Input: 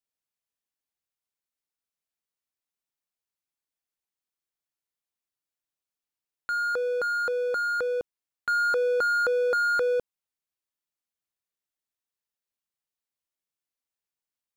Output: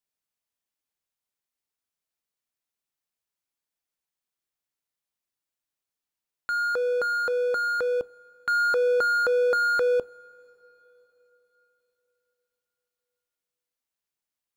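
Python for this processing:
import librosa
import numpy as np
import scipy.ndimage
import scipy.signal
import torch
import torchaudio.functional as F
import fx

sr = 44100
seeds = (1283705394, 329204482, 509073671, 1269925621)

y = fx.rev_double_slope(x, sr, seeds[0], early_s=0.29, late_s=4.1, knee_db=-18, drr_db=17.5)
y = y * librosa.db_to_amplitude(1.5)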